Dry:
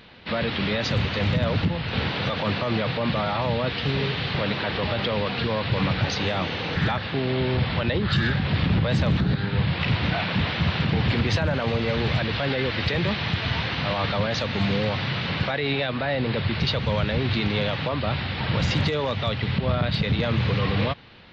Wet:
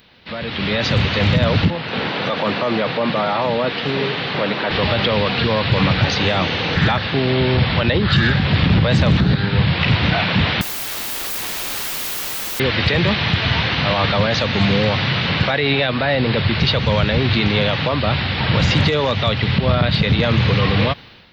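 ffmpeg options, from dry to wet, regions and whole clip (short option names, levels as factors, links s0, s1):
-filter_complex "[0:a]asettb=1/sr,asplit=3[s0][s1][s2];[s0]atrim=end=1.704[s3];[s1]atrim=start=1.7:end=4.71,asetpts=PTS-STARTPTS,afade=t=in:d=0.004:c=qsin,afade=t=out:st=3.006:d=0.004:c=qsin,highpass=220,highshelf=f=2900:g=-10.5[s4];[s2]atrim=start=4.706[s5];[s3][s4]acrossfade=d=0.004:c1=hsin:c2=qsin[s6];[s6][s5]acrossfade=d=0.004:c1=qsin:c2=hsin,asettb=1/sr,asplit=3[s7][s8][s9];[s7]atrim=end=10.614[s10];[s8]atrim=start=10.61:end=12.6,asetpts=PTS-STARTPTS,afade=t=in:d=0.004:c=qsin,afade=t=out:st=1.986:d=0.004:c=qsin,highpass=f=270:w=0.5412,highpass=f=270:w=1.3066,aeval=exprs='(mod(33.5*val(0)+1,2)-1)/33.5':c=same[s11];[s9]atrim=start=12.596[s12];[s10][s11]acrossfade=d=0.004:c1=hsin:c2=qsin[s13];[s13][s12]acrossfade=d=0.004:c1=qsin:c2=hsin,acrossover=split=4300[s14][s15];[s15]acompressor=threshold=0.00398:ratio=4:attack=1:release=60[s16];[s14][s16]amix=inputs=2:normalize=0,aemphasis=mode=production:type=50fm,dynaudnorm=f=420:g=3:m=4.22,volume=0.668"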